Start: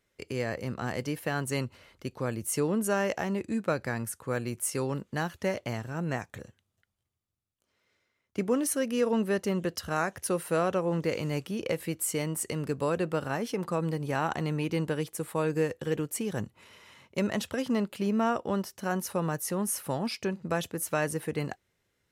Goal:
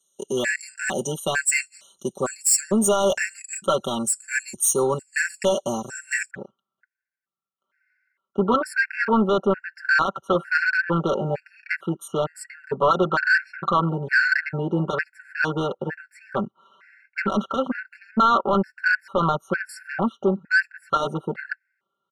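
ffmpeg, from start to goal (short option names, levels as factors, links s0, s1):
-af "highpass=190,afwtdn=0.0126,aecho=1:1:5.2:0.89,crystalizer=i=8:c=0,asetnsamples=n=441:p=0,asendcmd='6.31 lowpass f 1500',lowpass=f=7800:t=q:w=6.2,apsyclip=5.96,asoftclip=type=tanh:threshold=0.708,afftfilt=real='re*gt(sin(2*PI*1.1*pts/sr)*(1-2*mod(floor(b*sr/1024/1400),2)),0)':imag='im*gt(sin(2*PI*1.1*pts/sr)*(1-2*mod(floor(b*sr/1024/1400),2)),0)':win_size=1024:overlap=0.75,volume=0.398"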